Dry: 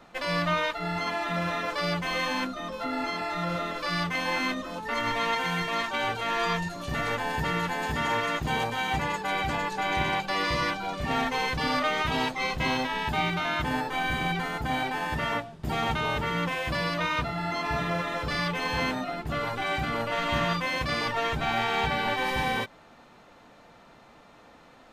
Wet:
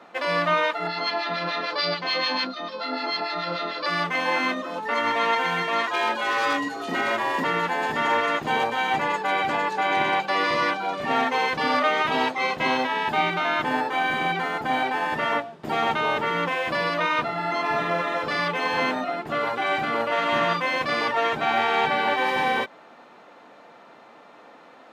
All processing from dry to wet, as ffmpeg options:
-filter_complex "[0:a]asettb=1/sr,asplit=3[s0][s1][s2];[s0]atrim=end=0.874[s3];[s1]atrim=start=0.87:end=3.86,asetpts=PTS-STARTPTS,afade=t=in:d=0.004:c=qsin,afade=t=out:st=2.986:d=0.004:c=qsin,acrossover=split=1400[s4][s5];[s4]aeval=exprs='val(0)*(1-0.7/2+0.7/2*cos(2*PI*6.8*n/s))':c=same[s6];[s5]aeval=exprs='val(0)*(1-0.7/2-0.7/2*cos(2*PI*6.8*n/s))':c=same[s7];[s6][s7]amix=inputs=2:normalize=0,lowpass=f=4500:t=q:w=6.1[s8];[s2]atrim=start=3.856[s9];[s3][s8]acrossfade=d=0.004:c1=hsin:c2=qsin[s10];[s10][s9]acrossfade=d=0.004:c1=qsin:c2=hsin,asettb=1/sr,asplit=3[s11][s12][s13];[s11]atrim=end=5.874[s14];[s12]atrim=start=5.87:end=7.44,asetpts=PTS-STARTPTS,afade=t=in:d=0.004:c=qsin,afade=t=out:st=1.566:d=0.004:c=qsin,highshelf=f=4500:g=2.5,aeval=exprs='0.0841*(abs(mod(val(0)/0.0841+3,4)-2)-1)':c=same,afreqshift=110[s15];[s13]atrim=start=7.436[s16];[s14][s15]acrossfade=d=0.004:c1=hsin:c2=qsin[s17];[s17][s16]acrossfade=d=0.004:c1=qsin:c2=hsin,highpass=300,highshelf=f=4300:g=-12,volume=2.11"

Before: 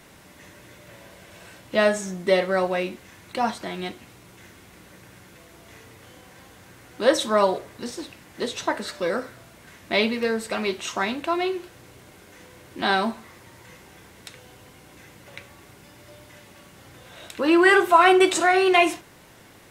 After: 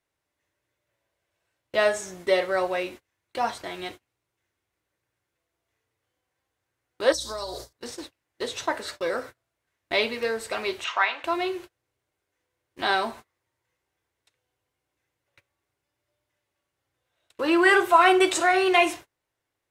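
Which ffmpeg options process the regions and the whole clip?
-filter_complex "[0:a]asettb=1/sr,asplit=3[s0][s1][s2];[s0]atrim=end=7.124[s3];[s1]atrim=start=7.12:end=7.73,asetpts=PTS-STARTPTS,afade=t=in:d=0.004:c=qsin,afade=t=out:st=0.606:d=0.004:c=qsin,highshelf=f=3400:t=q:w=3:g=11,acompressor=threshold=0.0447:ratio=8:attack=3.2:release=140:knee=1:detection=peak,aeval=exprs='val(0)+0.00562*(sin(2*PI*60*n/s)+sin(2*PI*2*60*n/s)/2+sin(2*PI*3*60*n/s)/3+sin(2*PI*4*60*n/s)/4+sin(2*PI*5*60*n/s)/5)':c=same[s4];[s2]atrim=start=7.726[s5];[s3][s4]acrossfade=d=0.004:c1=hsin:c2=qsin[s6];[s6][s5]acrossfade=d=0.004:c1=qsin:c2=hsin,asettb=1/sr,asplit=3[s7][s8][s9];[s7]atrim=end=10.844[s10];[s8]atrim=start=10.84:end=11.24,asetpts=PTS-STARTPTS,afade=t=in:d=0.004:c=qsin,afade=t=out:st=0.396:d=0.004:c=qsin,acontrast=66,asuperpass=centerf=1600:order=4:qfactor=0.68[s11];[s9]atrim=start=11.236[s12];[s10][s11]acrossfade=d=0.004:c1=hsin:c2=qsin[s13];[s13][s12]acrossfade=d=0.004:c1=qsin:c2=hsin,agate=range=0.0316:threshold=0.0158:ratio=16:detection=peak,equalizer=f=200:w=2.3:g=-14,volume=0.841"

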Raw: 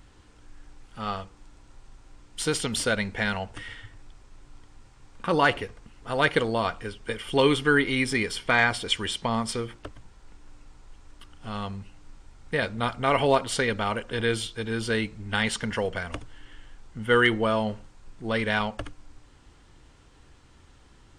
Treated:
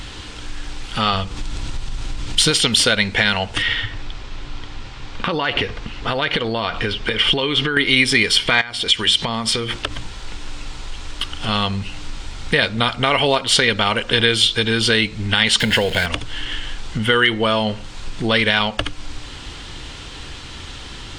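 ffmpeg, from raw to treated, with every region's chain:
-filter_complex "[0:a]asettb=1/sr,asplit=3[s0][s1][s2];[s0]atrim=end=1.134[s3];[s1]atrim=start=1.13:end=2.51,asetpts=PTS-STARTPTS,afade=t=in:d=0.004:c=qsin,afade=t=out:st=1.376:d=0.004:c=qsin,bass=f=250:g=7,treble=f=4000:g=1,acompressor=mode=upward:threshold=0.0178:ratio=2.5:attack=3.2:release=140:knee=2.83:detection=peak,aeval=exprs='clip(val(0),-1,0.126)':c=same[s4];[s2]atrim=start=2.506[s5];[s3][s4]acrossfade=d=0.004:c1=hsin:c2=qsin[s6];[s6][s5]acrossfade=d=0.004:c1=qsin:c2=hsin,asettb=1/sr,asplit=3[s7][s8][s9];[s7]atrim=end=3.624[s10];[s8]atrim=start=3.62:end=7.77,asetpts=PTS-STARTPTS,afade=t=in:d=0.004:c=qsin,afade=t=out:st=4.146:d=0.004:c=qsin,lowpass=6700,highshelf=f=4900:g=-7.5,acompressor=threshold=0.0251:ratio=6:attack=3.2:release=140:knee=1:detection=peak[s11];[s9]atrim=start=7.766[s12];[s10][s11]acrossfade=d=0.004:c1=hsin:c2=qsin[s13];[s13][s12]acrossfade=d=0.004:c1=qsin:c2=hsin,asettb=1/sr,asplit=3[s14][s15][s16];[s14]atrim=end=8.614[s17];[s15]atrim=start=8.61:end=11.49,asetpts=PTS-STARTPTS,afade=t=in:d=0.004:c=qsin,afade=t=out:st=2.876:d=0.004:c=qsin,bandreject=f=50:t=h:w=6,bandreject=f=100:t=h:w=6,bandreject=f=150:t=h:w=6,bandreject=f=200:t=h:w=6,bandreject=f=250:t=h:w=6,bandreject=f=300:t=h:w=6,acompressor=threshold=0.0112:ratio=4:attack=3.2:release=140:knee=1:detection=peak[s18];[s16]atrim=start=11.486[s19];[s17][s18]acrossfade=d=0.004:c1=hsin:c2=qsin[s20];[s20][s19]acrossfade=d=0.004:c1=qsin:c2=hsin,asettb=1/sr,asplit=3[s21][s22][s23];[s21]atrim=end=15.604[s24];[s22]atrim=start=15.6:end=16.06,asetpts=PTS-STARTPTS,afade=t=in:d=0.004:c=qsin,afade=t=out:st=0.456:d=0.004:c=qsin,aeval=exprs='val(0)+0.5*0.02*sgn(val(0))':c=same,equalizer=f=1200:t=o:w=0.25:g=-13,bandreject=f=5800:w=5.4[s25];[s23]atrim=start=16.056[s26];[s24][s25]acrossfade=d=0.004:c1=hsin:c2=qsin[s27];[s27][s26]acrossfade=d=0.004:c1=qsin:c2=hsin,acompressor=threshold=0.01:ratio=3,equalizer=f=3500:w=0.87:g=11.5,alimiter=level_in=10:limit=0.891:release=50:level=0:latency=1,volume=0.891"

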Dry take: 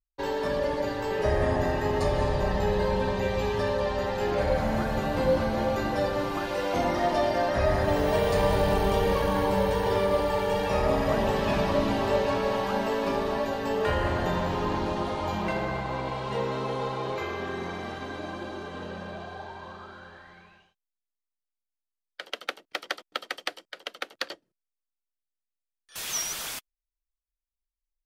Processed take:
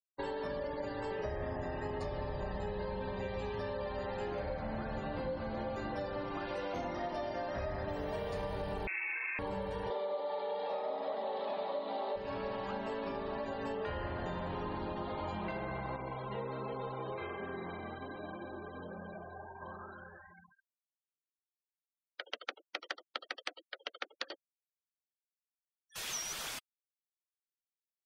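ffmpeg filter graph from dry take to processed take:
-filter_complex "[0:a]asettb=1/sr,asplit=3[s0][s1][s2];[s0]atrim=end=8.874[s3];[s1]atrim=start=8.87:end=9.39,asetpts=PTS-STARTPTS,afade=t=in:d=0.004:c=qsin,afade=t=out:st=0.516:d=0.004:c=qsin,adynamicsmooth=sensitivity=4.5:basefreq=1900,lowpass=f=2300:t=q:w=0.5098,lowpass=f=2300:t=q:w=0.6013,lowpass=f=2300:t=q:w=0.9,lowpass=f=2300:t=q:w=2.563,afreqshift=-2700[s4];[s2]atrim=start=9.386[s5];[s3][s4]acrossfade=d=0.004:c1=hsin:c2=qsin[s6];[s6][s5]acrossfade=d=0.004:c1=qsin:c2=hsin,asettb=1/sr,asplit=3[s7][s8][s9];[s7]atrim=end=9.904[s10];[s8]atrim=start=9.9:end=12.16,asetpts=PTS-STARTPTS,afade=t=in:d=0.004:c=qsin,afade=t=out:st=2.256:d=0.004:c=qsin,aeval=exprs='val(0)+0.5*0.0355*sgn(val(0))':c=same,highpass=f=270:w=0.5412,highpass=f=270:w=1.3066,equalizer=f=310:t=q:w=4:g=-8,equalizer=f=540:t=q:w=4:g=6,equalizer=f=780:t=q:w=4:g=7,equalizer=f=1600:t=q:w=4:g=-7,equalizer=f=2600:t=q:w=4:g=-7,equalizer=f=3900:t=q:w=4:g=7,lowpass=f=4100:w=0.5412,lowpass=f=4100:w=1.3066[s11];[s9]atrim=start=12.156[s12];[s10][s11]acrossfade=d=0.004:c1=hsin:c2=qsin[s13];[s13][s12]acrossfade=d=0.004:c1=qsin:c2=hsin,asettb=1/sr,asplit=3[s14][s15][s16];[s14]atrim=end=15.964[s17];[s15]atrim=start=15.96:end=19.61,asetpts=PTS-STARTPTS,afade=t=in:d=0.004:c=qsin,afade=t=out:st=3.646:d=0.004:c=qsin,bandreject=f=121.2:t=h:w=4,bandreject=f=242.4:t=h:w=4,bandreject=f=363.6:t=h:w=4,bandreject=f=484.8:t=h:w=4,bandreject=f=606:t=h:w=4,bandreject=f=727.2:t=h:w=4,bandreject=f=848.4:t=h:w=4,bandreject=f=969.6:t=h:w=4,bandreject=f=1090.8:t=h:w=4,bandreject=f=1212:t=h:w=4,bandreject=f=1333.2:t=h:w=4,bandreject=f=1454.4:t=h:w=4,bandreject=f=1575.6:t=h:w=4,bandreject=f=1696.8:t=h:w=4,bandreject=f=1818:t=h:w=4,bandreject=f=1939.2:t=h:w=4,bandreject=f=2060.4:t=h:w=4,bandreject=f=2181.6:t=h:w=4,bandreject=f=2302.8:t=h:w=4,bandreject=f=2424:t=h:w=4,bandreject=f=2545.2:t=h:w=4,bandreject=f=2666.4:t=h:w=4,bandreject=f=2787.6:t=h:w=4,bandreject=f=2908.8:t=h:w=4,bandreject=f=3030:t=h:w=4,bandreject=f=3151.2:t=h:w=4,bandreject=f=3272.4:t=h:w=4,bandreject=f=3393.6:t=h:w=4,bandreject=f=3514.8:t=h:w=4,bandreject=f=3636:t=h:w=4,bandreject=f=3757.2:t=h:w=4,bandreject=f=3878.4:t=h:w=4,bandreject=f=3999.6:t=h:w=4,bandreject=f=4120.8:t=h:w=4,bandreject=f=4242:t=h:w=4,bandreject=f=4363.2:t=h:w=4,bandreject=f=4484.4:t=h:w=4,flanger=delay=4.1:depth=5.7:regen=-53:speed=1.3:shape=triangular[s18];[s16]atrim=start=19.606[s19];[s17][s18]acrossfade=d=0.004:c1=hsin:c2=qsin[s20];[s20][s19]acrossfade=d=0.004:c1=qsin:c2=hsin,afftfilt=real='re*gte(hypot(re,im),0.00891)':imag='im*gte(hypot(re,im),0.00891)':win_size=1024:overlap=0.75,highshelf=f=8500:g=-6.5,acompressor=threshold=0.0251:ratio=6,volume=0.668"

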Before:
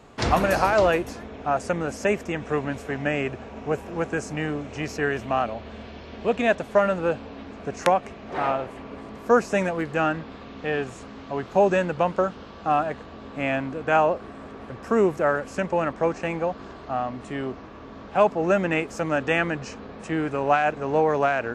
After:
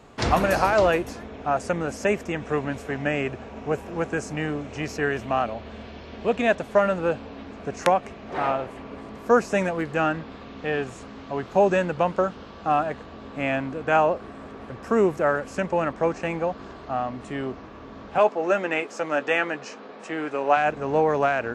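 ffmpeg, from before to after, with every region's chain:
-filter_complex "[0:a]asettb=1/sr,asplit=3[s0][s1][s2];[s0]atrim=end=18.184[s3];[s1]atrim=start=18.18:end=20.57,asetpts=PTS-STARTPTS,afade=t=in:d=0.004:c=qsin,afade=t=out:st=2.386:d=0.004:c=qsin,highpass=330,lowpass=7800,asplit=2[s4][s5];[s5]adelay=14,volume=0.266[s6];[s4][s6]amix=inputs=2:normalize=0,atrim=end_sample=105399[s7];[s2]atrim=start=20.566[s8];[s3][s7]acrossfade=d=0.004:c1=hsin:c2=qsin[s9];[s9][s8]acrossfade=d=0.004:c1=qsin:c2=hsin"

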